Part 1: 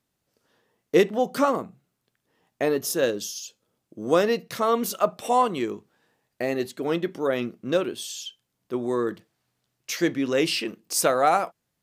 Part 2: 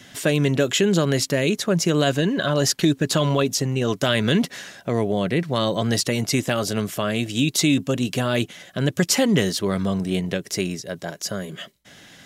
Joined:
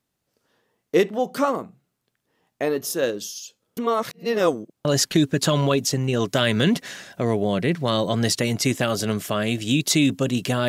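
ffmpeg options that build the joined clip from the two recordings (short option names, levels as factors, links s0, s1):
-filter_complex "[0:a]apad=whole_dur=10.68,atrim=end=10.68,asplit=2[s0][s1];[s0]atrim=end=3.772[s2];[s1]atrim=start=3.768:end=4.852,asetpts=PTS-STARTPTS,areverse[s3];[1:a]atrim=start=2.528:end=8.36[s4];[s2][s3]acrossfade=d=0.004:c1=hsin:c2=hsin[s5];[s5][s4]acrossfade=d=0.004:c1=hsin:c2=hsin"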